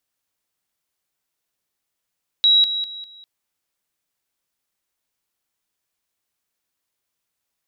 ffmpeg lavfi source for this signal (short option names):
-f lavfi -i "aevalsrc='pow(10,(-11-10*floor(t/0.2))/20)*sin(2*PI*3870*t)':d=0.8:s=44100"